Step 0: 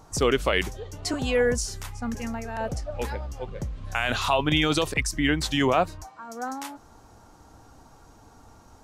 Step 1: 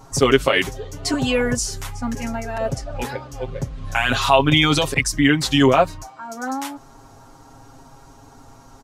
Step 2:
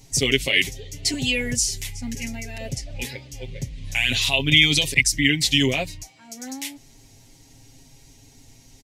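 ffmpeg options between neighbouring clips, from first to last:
-af "aecho=1:1:7.4:0.96,volume=3.5dB"
-af "firequalizer=gain_entry='entry(100,0);entry(1300,-23);entry(2000,6)':delay=0.05:min_phase=1,volume=-3dB"

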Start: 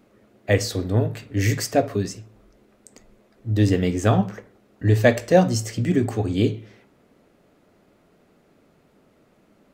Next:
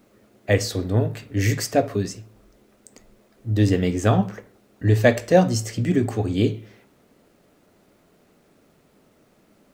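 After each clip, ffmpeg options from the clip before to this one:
-af "acrusher=bits=10:mix=0:aa=0.000001"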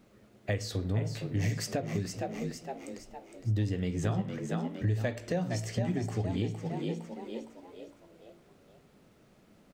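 -filter_complex "[0:a]asplit=2[a][b];[b]asplit=5[c][d][e][f][g];[c]adelay=461,afreqshift=58,volume=-9dB[h];[d]adelay=922,afreqshift=116,volume=-16.3dB[i];[e]adelay=1383,afreqshift=174,volume=-23.7dB[j];[f]adelay=1844,afreqshift=232,volume=-31dB[k];[g]adelay=2305,afreqshift=290,volume=-38.3dB[l];[h][i][j][k][l]amix=inputs=5:normalize=0[m];[a][m]amix=inputs=2:normalize=0,acompressor=threshold=-26dB:ratio=5,firequalizer=gain_entry='entry(160,0);entry(270,-5);entry(3000,-3);entry(13000,-9)':delay=0.05:min_phase=1"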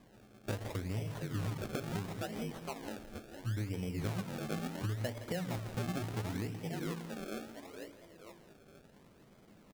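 -af "acompressor=threshold=-39dB:ratio=2,acrusher=samples=31:mix=1:aa=0.000001:lfo=1:lforange=31:lforate=0.72,aecho=1:1:167:0.211"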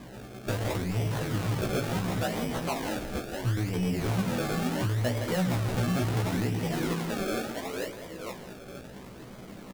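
-filter_complex "[0:a]asplit=2[a][b];[b]alimiter=level_in=11.5dB:limit=-24dB:level=0:latency=1,volume=-11.5dB,volume=3dB[c];[a][c]amix=inputs=2:normalize=0,asoftclip=type=tanh:threshold=-32.5dB,asplit=2[d][e];[e]adelay=16,volume=-4dB[f];[d][f]amix=inputs=2:normalize=0,volume=7dB"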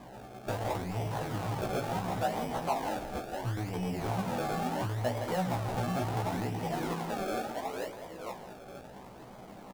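-af "equalizer=f=800:t=o:w=0.87:g=11.5,volume=-6.5dB"

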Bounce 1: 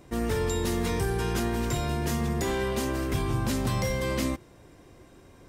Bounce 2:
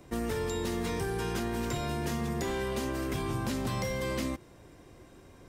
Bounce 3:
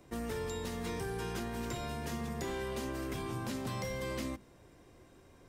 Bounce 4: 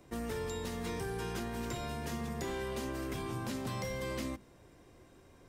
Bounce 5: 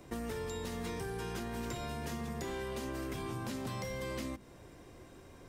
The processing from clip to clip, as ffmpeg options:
-filter_complex "[0:a]acrossover=split=130|5700[a][b][c];[a]acompressor=threshold=-39dB:ratio=4[d];[b]acompressor=threshold=-29dB:ratio=4[e];[c]acompressor=threshold=-46dB:ratio=4[f];[d][e][f]amix=inputs=3:normalize=0,volume=-1dB"
-af "bandreject=f=50:t=h:w=6,bandreject=f=100:t=h:w=6,bandreject=f=150:t=h:w=6,bandreject=f=200:t=h:w=6,bandreject=f=250:t=h:w=6,bandreject=f=300:t=h:w=6,bandreject=f=350:t=h:w=6,volume=-5dB"
-af anull
-af "acompressor=threshold=-43dB:ratio=3,volume=5dB"

